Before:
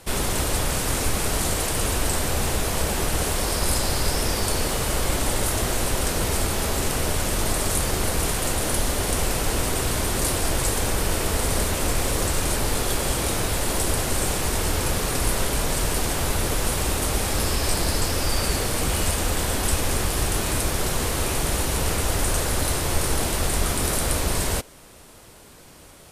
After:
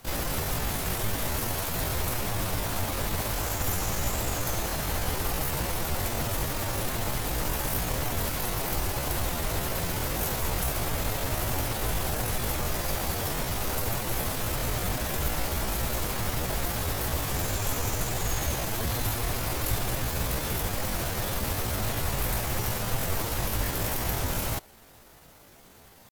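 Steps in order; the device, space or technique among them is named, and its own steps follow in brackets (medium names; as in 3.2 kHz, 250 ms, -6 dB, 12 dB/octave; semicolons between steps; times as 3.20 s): chipmunk voice (pitch shift +6 st); trim -5.5 dB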